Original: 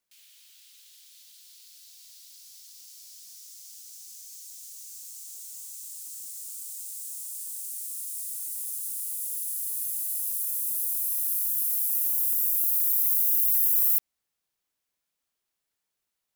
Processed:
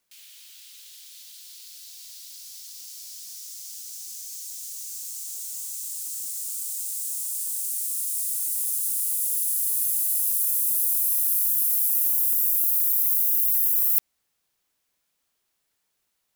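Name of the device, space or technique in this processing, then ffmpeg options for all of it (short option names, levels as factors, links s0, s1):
compression on the reversed sound: -af "areverse,acompressor=threshold=0.0501:ratio=5,areverse,volume=2.37"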